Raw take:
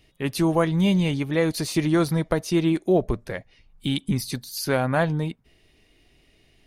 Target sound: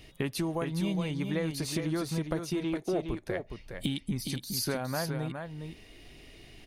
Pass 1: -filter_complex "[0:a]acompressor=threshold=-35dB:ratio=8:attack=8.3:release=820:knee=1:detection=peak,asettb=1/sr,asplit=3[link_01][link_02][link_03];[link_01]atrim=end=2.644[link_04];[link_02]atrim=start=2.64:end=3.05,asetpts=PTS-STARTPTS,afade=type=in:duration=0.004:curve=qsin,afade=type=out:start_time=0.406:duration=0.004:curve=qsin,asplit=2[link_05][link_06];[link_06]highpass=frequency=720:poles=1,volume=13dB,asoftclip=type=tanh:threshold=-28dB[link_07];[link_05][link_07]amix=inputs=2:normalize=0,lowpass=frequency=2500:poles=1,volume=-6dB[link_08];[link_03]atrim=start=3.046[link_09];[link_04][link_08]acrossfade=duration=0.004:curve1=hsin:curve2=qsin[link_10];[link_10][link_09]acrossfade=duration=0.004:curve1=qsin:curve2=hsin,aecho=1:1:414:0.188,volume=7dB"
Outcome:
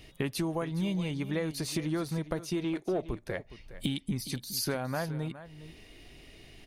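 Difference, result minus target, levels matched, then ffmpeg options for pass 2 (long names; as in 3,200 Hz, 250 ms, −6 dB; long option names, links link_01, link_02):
echo-to-direct −8 dB
-filter_complex "[0:a]acompressor=threshold=-35dB:ratio=8:attack=8.3:release=820:knee=1:detection=peak,asettb=1/sr,asplit=3[link_01][link_02][link_03];[link_01]atrim=end=2.644[link_04];[link_02]atrim=start=2.64:end=3.05,asetpts=PTS-STARTPTS,afade=type=in:duration=0.004:curve=qsin,afade=type=out:start_time=0.406:duration=0.004:curve=qsin,asplit=2[link_05][link_06];[link_06]highpass=frequency=720:poles=1,volume=13dB,asoftclip=type=tanh:threshold=-28dB[link_07];[link_05][link_07]amix=inputs=2:normalize=0,lowpass=frequency=2500:poles=1,volume=-6dB[link_08];[link_03]atrim=start=3.046[link_09];[link_04][link_08]acrossfade=duration=0.004:curve1=hsin:curve2=qsin[link_10];[link_10][link_09]acrossfade=duration=0.004:curve1=qsin:curve2=hsin,aecho=1:1:414:0.473,volume=7dB"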